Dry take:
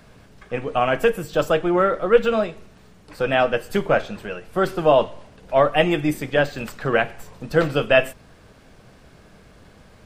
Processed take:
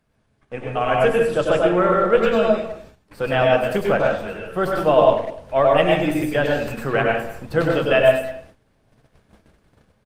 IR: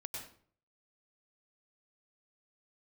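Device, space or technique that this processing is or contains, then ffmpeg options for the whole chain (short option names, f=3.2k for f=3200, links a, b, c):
speakerphone in a meeting room: -filter_complex "[0:a]asettb=1/sr,asplit=3[a][b][c];[a]atrim=end=1.664[d];[b]atrim=start=1.66:end=2.24,asetpts=PTS-STARTPTS,afade=t=in:d=0.004:c=qsin,afade=t=out:st=0.576:d=0.004:c=qsin,asplit=2[e][f];[f]adelay=22,volume=-12.5dB[g];[e][g]amix=inputs=2:normalize=0,atrim=end_sample=25578[h];[c]atrim=start=2.236[i];[d][h]acrossfade=d=0.004:c1=hsin:c2=qsin[j];[j][i]acrossfade=d=0.004:c1=qsin:c2=hsin[k];[1:a]atrim=start_sample=2205[l];[k][l]afir=irnorm=-1:irlink=0,asplit=2[m][n];[n]adelay=200,highpass=300,lowpass=3.4k,asoftclip=type=hard:threshold=-15.5dB,volume=-15dB[o];[m][o]amix=inputs=2:normalize=0,dynaudnorm=f=520:g=3:m=4.5dB,agate=range=-14dB:threshold=-43dB:ratio=16:detection=peak" -ar 48000 -c:a libopus -b:a 32k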